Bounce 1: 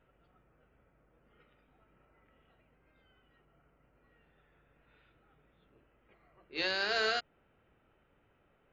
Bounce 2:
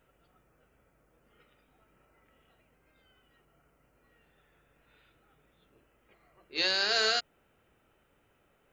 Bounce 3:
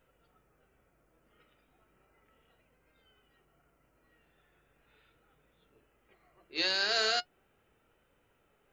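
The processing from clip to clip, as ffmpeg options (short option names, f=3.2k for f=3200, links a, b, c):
-af "bass=f=250:g=-2,treble=f=4k:g=12,volume=1.5dB"
-af "flanger=delay=1.9:depth=1.3:regen=81:speed=0.37:shape=triangular,volume=2.5dB"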